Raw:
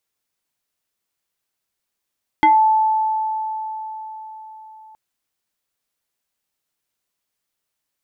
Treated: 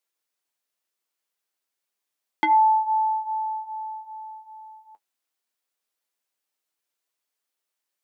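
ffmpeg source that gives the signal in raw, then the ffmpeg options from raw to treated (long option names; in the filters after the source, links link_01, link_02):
-f lavfi -i "aevalsrc='0.376*pow(10,-3*t/4.57)*sin(2*PI*873*t+1.1*pow(10,-3*t/0.22)*sin(2*PI*1.36*873*t))':duration=2.52:sample_rate=44100"
-af "highpass=300,flanger=delay=5.7:depth=5:regen=-41:speed=0.29:shape=triangular"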